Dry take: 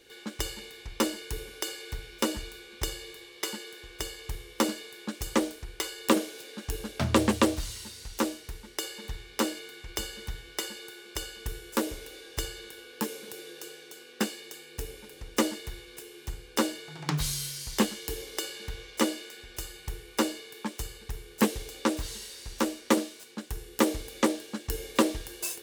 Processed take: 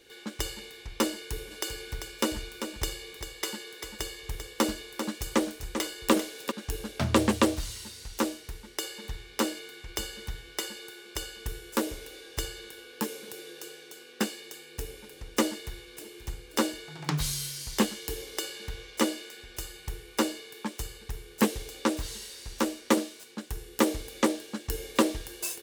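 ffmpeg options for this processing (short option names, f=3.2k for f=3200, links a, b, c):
-filter_complex "[0:a]asplit=3[a][b][c];[a]afade=t=out:st=1.5:d=0.02[d];[b]aecho=1:1:393:0.398,afade=t=in:st=1.5:d=0.02,afade=t=out:st=6.5:d=0.02[e];[c]afade=t=in:st=6.5:d=0.02[f];[d][e][f]amix=inputs=3:normalize=0,asplit=2[g][h];[h]afade=t=in:st=15.47:d=0.01,afade=t=out:st=16.2:d=0.01,aecho=0:1:530|1060|1590|2120|2650|3180:0.211349|0.116242|0.063933|0.0351632|0.0193397|0.0106369[i];[g][i]amix=inputs=2:normalize=0"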